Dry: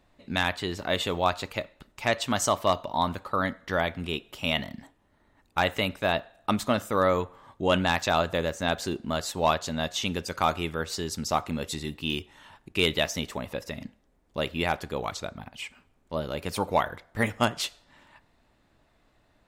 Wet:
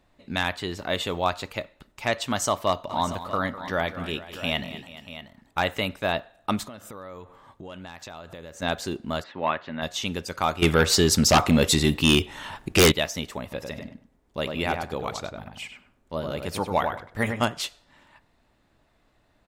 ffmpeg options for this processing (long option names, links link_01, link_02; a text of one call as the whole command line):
ffmpeg -i in.wav -filter_complex "[0:a]asplit=3[link_01][link_02][link_03];[link_01]afade=type=out:start_time=2.89:duration=0.02[link_04];[link_02]aecho=1:1:203|428|637:0.2|0.133|0.211,afade=type=in:start_time=2.89:duration=0.02,afade=type=out:start_time=5.68:duration=0.02[link_05];[link_03]afade=type=in:start_time=5.68:duration=0.02[link_06];[link_04][link_05][link_06]amix=inputs=3:normalize=0,asettb=1/sr,asplit=3[link_07][link_08][link_09];[link_07]atrim=end=6.664[link_10];[link_08]atrim=start=6.66:end=8.62,asetpts=PTS-STARTPTS,afade=type=in:duration=0.004:curve=qsin,afade=type=out:start_time=1.956:duration=0.004:curve=qsin,acompressor=threshold=-38dB:ratio=6:attack=3.2:release=140:knee=1:detection=peak[link_11];[link_09]atrim=start=8.616[link_12];[link_10][link_11]acrossfade=duration=0.004:curve1=hsin:curve2=qsin[link_13];[link_13][link_12]acrossfade=duration=0.004:curve1=qsin:curve2=hsin,asplit=3[link_14][link_15][link_16];[link_14]afade=type=out:start_time=9.22:duration=0.02[link_17];[link_15]highpass=160,equalizer=frequency=170:width_type=q:width=4:gain=-3,equalizer=frequency=450:width_type=q:width=4:gain=-6,equalizer=frequency=720:width_type=q:width=4:gain=-5,equalizer=frequency=1900:width_type=q:width=4:gain=5,lowpass=frequency=2800:width=0.5412,lowpass=frequency=2800:width=1.3066,afade=type=in:start_time=9.22:duration=0.02,afade=type=out:start_time=9.81:duration=0.02[link_18];[link_16]afade=type=in:start_time=9.81:duration=0.02[link_19];[link_17][link_18][link_19]amix=inputs=3:normalize=0,asettb=1/sr,asplit=3[link_20][link_21][link_22];[link_20]atrim=end=10.624[link_23];[link_21]atrim=start=10.62:end=12.92,asetpts=PTS-STARTPTS,afade=type=in:duration=0.004:curve=qsin,afade=type=out:start_time=2.296:duration=0.004:curve=qsin,aeval=exprs='0.282*sin(PI/2*3.16*val(0)/0.282)':channel_layout=same[link_24];[link_22]atrim=start=12.916[link_25];[link_23][link_24]acrossfade=duration=0.004:curve1=hsin:curve2=qsin[link_26];[link_26][link_25]acrossfade=duration=0.004:curve1=qsin:curve2=hsin,asettb=1/sr,asplit=3[link_27][link_28][link_29];[link_27]atrim=end=13.424[link_30];[link_28]atrim=start=13.42:end=17.45,asetpts=PTS-STARTPTS,afade=type=in:duration=0.004:curve=qsin,afade=type=out:start_time=4.026:duration=0.004:curve=qsin,asplit=2[link_31][link_32];[link_32]adelay=98,lowpass=frequency=2000:poles=1,volume=-4.5dB,asplit=2[link_33][link_34];[link_34]adelay=98,lowpass=frequency=2000:poles=1,volume=0.22,asplit=2[link_35][link_36];[link_36]adelay=98,lowpass=frequency=2000:poles=1,volume=0.22[link_37];[link_31][link_33][link_35][link_37]amix=inputs=4:normalize=0,atrim=end_sample=177723[link_38];[link_29]atrim=start=17.446[link_39];[link_30][link_38]acrossfade=duration=0.004:curve1=hsin:curve2=qsin[link_40];[link_40][link_39]acrossfade=duration=0.004:curve1=qsin:curve2=hsin" out.wav